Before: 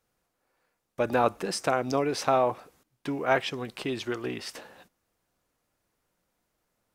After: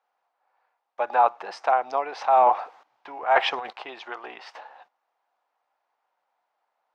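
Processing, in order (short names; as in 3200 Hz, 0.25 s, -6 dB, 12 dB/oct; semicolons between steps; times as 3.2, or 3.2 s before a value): resonant high-pass 810 Hz, resonance Q 3.9; air absorption 220 m; 2.21–3.73 transient shaper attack -4 dB, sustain +11 dB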